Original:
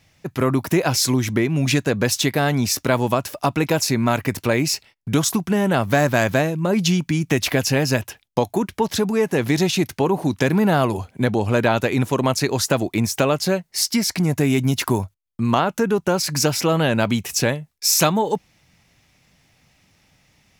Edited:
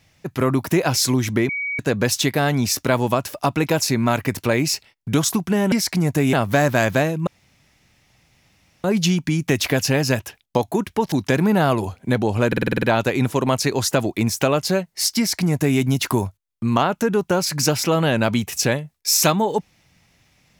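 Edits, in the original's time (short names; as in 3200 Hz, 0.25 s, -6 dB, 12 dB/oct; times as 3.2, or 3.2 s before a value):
1.49–1.79 bleep 2260 Hz -22.5 dBFS
6.66 insert room tone 1.57 s
8.94–10.24 cut
11.6 stutter 0.05 s, 8 plays
13.95–14.56 copy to 5.72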